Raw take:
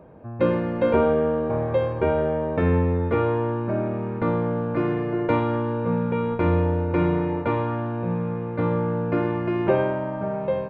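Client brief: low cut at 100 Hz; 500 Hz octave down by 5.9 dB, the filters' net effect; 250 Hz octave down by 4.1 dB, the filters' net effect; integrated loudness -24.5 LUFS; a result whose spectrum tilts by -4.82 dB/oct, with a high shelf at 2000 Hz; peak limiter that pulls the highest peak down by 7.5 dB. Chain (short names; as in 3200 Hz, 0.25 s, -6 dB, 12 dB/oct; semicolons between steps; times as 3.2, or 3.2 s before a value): HPF 100 Hz; bell 250 Hz -3.5 dB; bell 500 Hz -6.5 dB; high shelf 2000 Hz +5.5 dB; gain +4.5 dB; limiter -14.5 dBFS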